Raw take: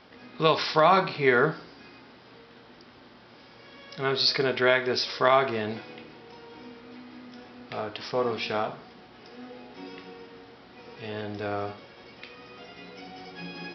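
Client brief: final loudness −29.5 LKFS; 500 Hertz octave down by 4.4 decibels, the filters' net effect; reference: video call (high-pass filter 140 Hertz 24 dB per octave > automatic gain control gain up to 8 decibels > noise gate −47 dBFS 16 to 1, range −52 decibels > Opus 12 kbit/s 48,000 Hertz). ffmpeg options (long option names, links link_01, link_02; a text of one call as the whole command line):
ffmpeg -i in.wav -af "highpass=frequency=140:width=0.5412,highpass=frequency=140:width=1.3066,equalizer=frequency=500:width_type=o:gain=-6,dynaudnorm=maxgain=8dB,agate=range=-52dB:threshold=-47dB:ratio=16,volume=-1.5dB" -ar 48000 -c:a libopus -b:a 12k out.opus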